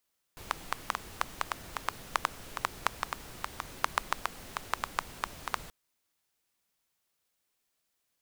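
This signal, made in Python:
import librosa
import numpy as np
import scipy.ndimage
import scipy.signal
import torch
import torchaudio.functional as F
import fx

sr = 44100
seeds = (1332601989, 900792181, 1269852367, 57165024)

y = fx.rain(sr, seeds[0], length_s=5.33, drops_per_s=5.4, hz=1100.0, bed_db=-8.5)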